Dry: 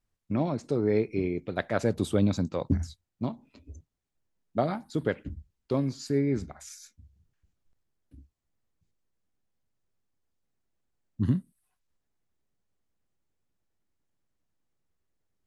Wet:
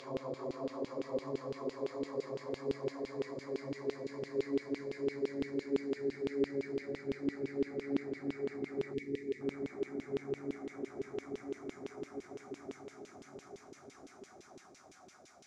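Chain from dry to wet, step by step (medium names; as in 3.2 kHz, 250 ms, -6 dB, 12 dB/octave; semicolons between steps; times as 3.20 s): Paulstretch 16×, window 1.00 s, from 5.81 s; LFO band-pass saw down 5.9 Hz 370–3200 Hz; time-frequency box 8.93–9.41 s, 510–1700 Hz -19 dB; trim +1 dB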